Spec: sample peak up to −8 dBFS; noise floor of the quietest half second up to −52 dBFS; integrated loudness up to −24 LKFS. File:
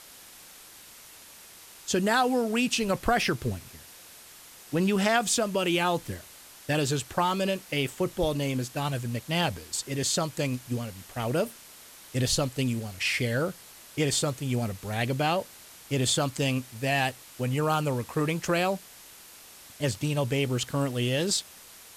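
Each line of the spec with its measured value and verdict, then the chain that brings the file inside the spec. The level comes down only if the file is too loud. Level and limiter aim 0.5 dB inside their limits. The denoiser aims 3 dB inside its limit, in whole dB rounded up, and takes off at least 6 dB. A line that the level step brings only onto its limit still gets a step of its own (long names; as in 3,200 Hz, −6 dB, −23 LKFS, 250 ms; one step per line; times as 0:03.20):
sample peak −10.5 dBFS: in spec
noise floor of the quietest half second −50 dBFS: out of spec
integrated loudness −28.0 LKFS: in spec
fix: broadband denoise 6 dB, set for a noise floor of −50 dBFS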